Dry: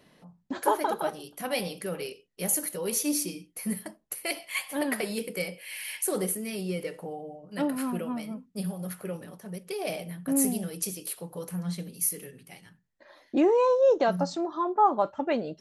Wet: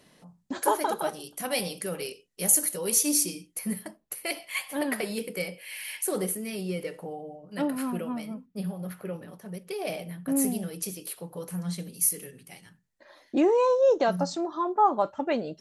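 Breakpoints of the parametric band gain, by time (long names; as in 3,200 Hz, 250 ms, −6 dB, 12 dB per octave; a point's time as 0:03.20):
parametric band 8,000 Hz 1.4 octaves
+8 dB
from 0:03.59 −1 dB
from 0:08.46 −10.5 dB
from 0:09.29 −3 dB
from 0:11.49 +4.5 dB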